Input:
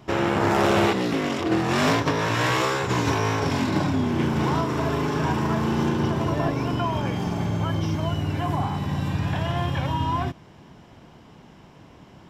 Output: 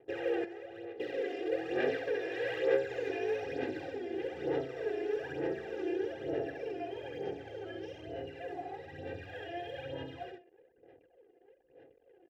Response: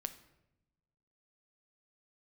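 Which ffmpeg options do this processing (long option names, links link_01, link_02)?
-filter_complex "[0:a]asplit=3[link_01][link_02][link_03];[link_01]bandpass=frequency=530:width_type=q:width=8,volume=0dB[link_04];[link_02]bandpass=frequency=1840:width_type=q:width=8,volume=-6dB[link_05];[link_03]bandpass=frequency=2480:width_type=q:width=8,volume=-9dB[link_06];[link_04][link_05][link_06]amix=inputs=3:normalize=0,aecho=1:1:2.5:1,aecho=1:1:67|134|201:0.668|0.12|0.0217,acrossover=split=790|4400[link_07][link_08][link_09];[link_09]alimiter=level_in=30.5dB:limit=-24dB:level=0:latency=1,volume=-30.5dB[link_10];[link_07][link_08][link_10]amix=inputs=3:normalize=0,aphaser=in_gain=1:out_gain=1:delay=2.9:decay=0.6:speed=1.1:type=sinusoidal,equalizer=frequency=2400:width_type=o:width=0.98:gain=-5,asettb=1/sr,asplit=3[link_11][link_12][link_13];[link_11]atrim=end=0.444[link_14];[link_12]atrim=start=0.44:end=1,asetpts=PTS-STARTPTS,afade=type=in:duration=0.004:curve=qsin,afade=type=out:start_time=0.556:duration=0.004:curve=qsin,acrossover=split=260|570[link_15][link_16][link_17];[link_15]acompressor=threshold=-54dB:ratio=4[link_18];[link_16]acompressor=threshold=-48dB:ratio=4[link_19];[link_17]acompressor=threshold=-50dB:ratio=4[link_20];[link_18][link_19][link_20]amix=inputs=3:normalize=0[link_21];[link_13]atrim=start=0.996[link_22];[link_14][link_21]acrossfade=duration=0.004:curve1=hsin:curve2=qsin[link_23];[link_23][link_22]acrossfade=duration=0.004:curve1=qsin:curve2=hsin,anlmdn=0.0001,volume=-4.5dB"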